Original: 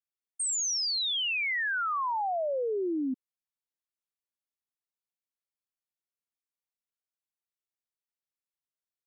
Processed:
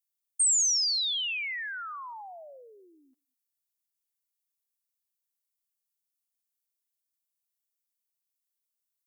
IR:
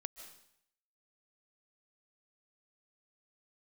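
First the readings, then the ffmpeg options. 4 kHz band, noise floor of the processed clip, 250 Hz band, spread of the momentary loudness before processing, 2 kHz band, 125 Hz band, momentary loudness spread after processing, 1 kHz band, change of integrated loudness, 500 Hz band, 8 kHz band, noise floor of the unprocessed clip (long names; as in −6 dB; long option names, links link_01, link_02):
+1.5 dB, below −85 dBFS, −30.5 dB, 6 LU, −4.5 dB, can't be measured, 21 LU, −11.0 dB, +3.5 dB, −19.5 dB, +6.0 dB, below −85 dBFS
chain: -filter_complex "[0:a]highpass=540,aderivative,asplit=2[link_01][link_02];[1:a]atrim=start_sample=2205,afade=type=out:start_time=0.29:duration=0.01,atrim=end_sample=13230,asetrate=48510,aresample=44100[link_03];[link_02][link_03]afir=irnorm=-1:irlink=0,volume=-7.5dB[link_04];[link_01][link_04]amix=inputs=2:normalize=0,volume=4.5dB"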